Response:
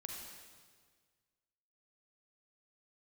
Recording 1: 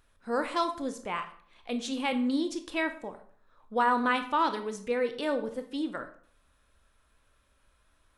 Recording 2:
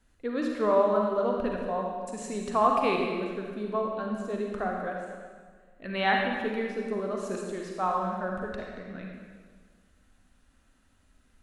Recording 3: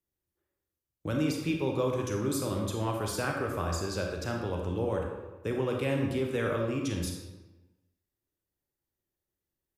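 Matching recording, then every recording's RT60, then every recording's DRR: 2; 0.55 s, 1.7 s, 1.2 s; 8.0 dB, 0.0 dB, 0.5 dB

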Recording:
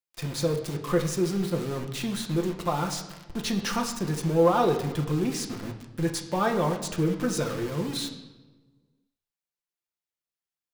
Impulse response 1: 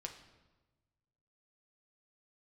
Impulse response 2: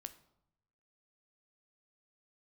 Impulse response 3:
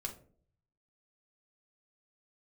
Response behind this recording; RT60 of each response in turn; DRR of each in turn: 1; 1.2 s, 0.80 s, 0.50 s; 2.5 dB, 10.0 dB, 1.0 dB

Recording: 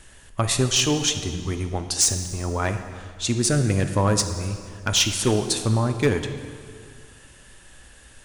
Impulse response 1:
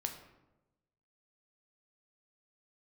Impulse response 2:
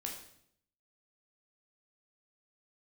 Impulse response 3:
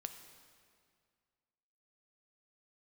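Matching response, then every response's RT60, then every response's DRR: 3; 1.0 s, 0.70 s, 2.1 s; 4.0 dB, -0.5 dB, 7.0 dB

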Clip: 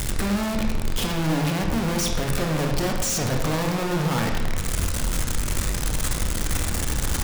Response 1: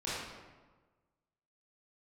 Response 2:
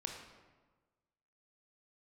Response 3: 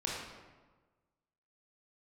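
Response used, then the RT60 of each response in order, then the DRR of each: 2; 1.3 s, 1.3 s, 1.3 s; -10.5 dB, 1.5 dB, -4.5 dB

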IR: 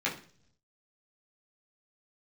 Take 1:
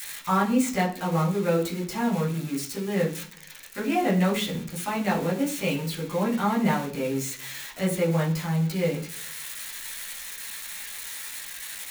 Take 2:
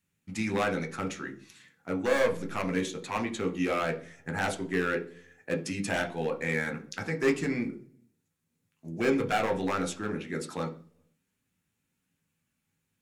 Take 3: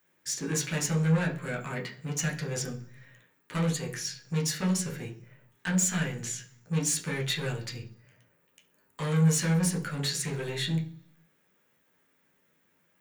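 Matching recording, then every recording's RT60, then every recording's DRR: 1; 0.50 s, 0.50 s, 0.50 s; -7.0 dB, 3.5 dB, -1.5 dB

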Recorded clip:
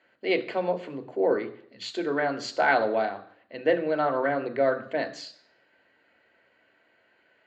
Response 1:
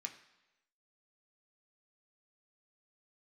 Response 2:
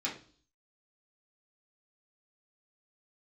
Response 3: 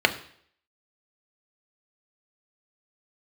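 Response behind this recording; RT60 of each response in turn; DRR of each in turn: 3; 1.0 s, 0.45 s, 0.60 s; 3.0 dB, -6.0 dB, 6.0 dB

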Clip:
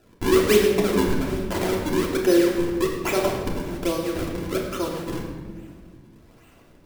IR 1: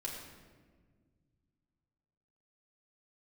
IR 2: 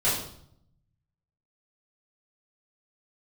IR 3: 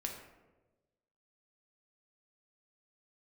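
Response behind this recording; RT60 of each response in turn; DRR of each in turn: 1; 1.6 s, 0.65 s, 1.2 s; -3.5 dB, -11.5 dB, 1.0 dB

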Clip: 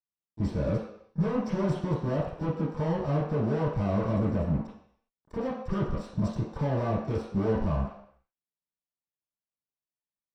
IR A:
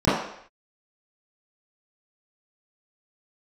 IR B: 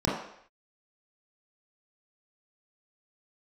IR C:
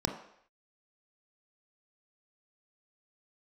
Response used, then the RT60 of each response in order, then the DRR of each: A; no single decay rate, no single decay rate, no single decay rate; -15.5 dB, -6.5 dB, 3.5 dB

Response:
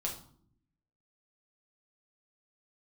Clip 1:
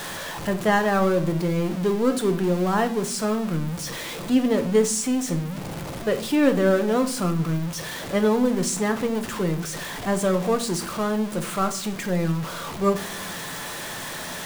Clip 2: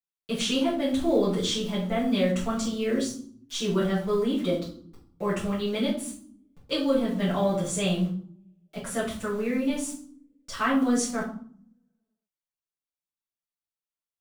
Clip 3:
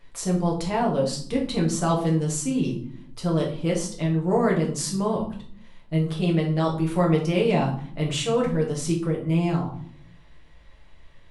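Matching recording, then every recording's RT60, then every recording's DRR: 3; 0.60 s, 0.60 s, 0.60 s; 6.5 dB, -9.0 dB, -2.5 dB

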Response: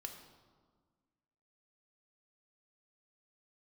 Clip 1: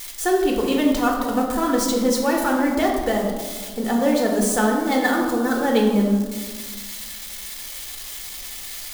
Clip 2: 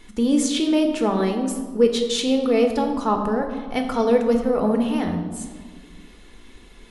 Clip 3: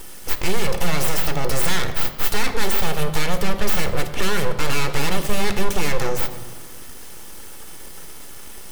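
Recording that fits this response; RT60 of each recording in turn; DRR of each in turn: 2; 1.6 s, 1.6 s, 1.6 s; -1.0 dB, 3.5 dB, 7.5 dB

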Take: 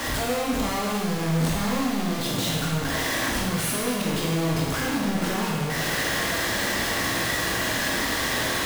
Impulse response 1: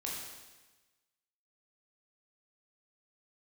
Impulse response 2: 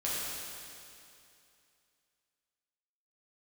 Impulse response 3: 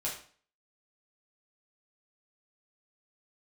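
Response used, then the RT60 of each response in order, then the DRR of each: 1; 1.2 s, 2.6 s, 0.45 s; -4.0 dB, -8.0 dB, -6.0 dB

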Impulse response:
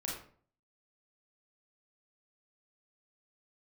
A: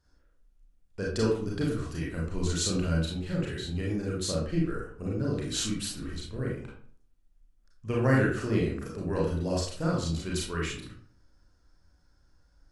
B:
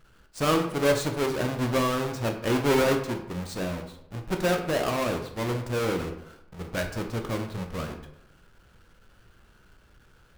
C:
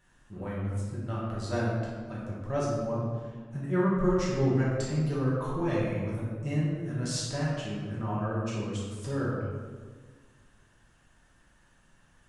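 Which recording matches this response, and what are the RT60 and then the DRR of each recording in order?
A; 0.50 s, 0.85 s, 1.6 s; -4.0 dB, 4.0 dB, -7.5 dB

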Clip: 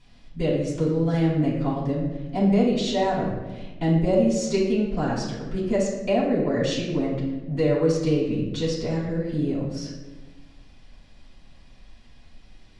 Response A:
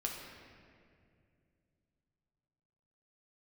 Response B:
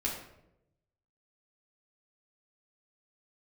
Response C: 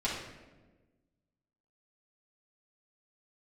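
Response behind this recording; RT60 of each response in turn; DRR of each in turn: C; 2.3 s, 0.85 s, 1.3 s; -1.0 dB, -5.0 dB, -8.0 dB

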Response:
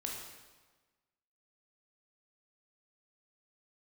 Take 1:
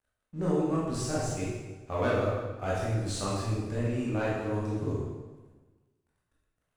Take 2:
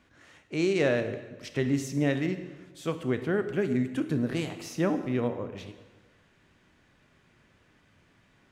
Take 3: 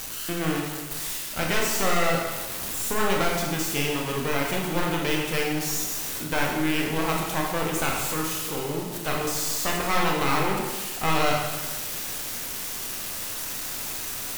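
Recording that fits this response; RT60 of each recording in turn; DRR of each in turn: 3; 1.3 s, 1.3 s, 1.3 s; -7.0 dB, 8.5 dB, -1.5 dB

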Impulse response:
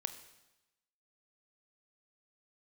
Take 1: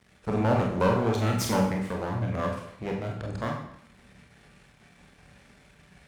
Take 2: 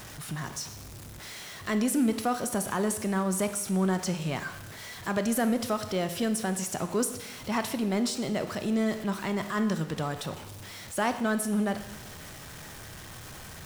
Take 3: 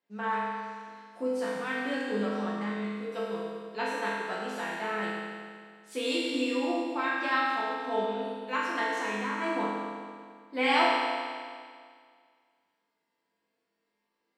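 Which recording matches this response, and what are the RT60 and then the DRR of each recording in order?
2; 0.70 s, 1.0 s, 2.0 s; -0.5 dB, 9.5 dB, -8.5 dB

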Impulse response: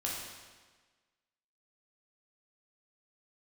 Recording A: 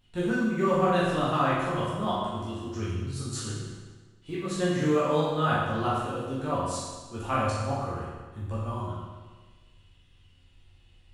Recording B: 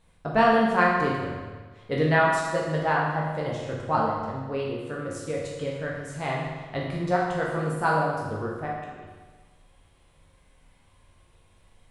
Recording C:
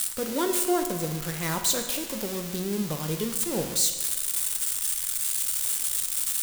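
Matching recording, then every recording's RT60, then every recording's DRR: B; 1.4 s, 1.4 s, 1.4 s; -9.0 dB, -4.5 dB, 5.0 dB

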